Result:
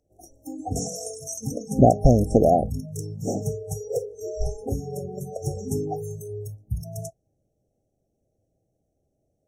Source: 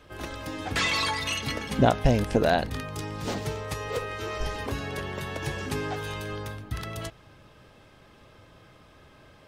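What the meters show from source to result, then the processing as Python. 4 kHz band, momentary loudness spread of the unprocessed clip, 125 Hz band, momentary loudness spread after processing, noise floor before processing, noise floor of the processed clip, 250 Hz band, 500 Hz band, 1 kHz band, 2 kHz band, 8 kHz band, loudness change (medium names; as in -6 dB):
-14.5 dB, 12 LU, +5.0 dB, 17 LU, -55 dBFS, -75 dBFS, +5.0 dB, +5.0 dB, +2.5 dB, under -40 dB, +5.0 dB, +3.5 dB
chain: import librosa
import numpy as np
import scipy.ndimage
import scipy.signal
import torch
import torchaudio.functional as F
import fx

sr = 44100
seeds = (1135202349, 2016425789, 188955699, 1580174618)

y = fx.brickwall_bandstop(x, sr, low_hz=810.0, high_hz=5400.0)
y = fx.noise_reduce_blind(y, sr, reduce_db=24)
y = F.gain(torch.from_numpy(y), 5.5).numpy()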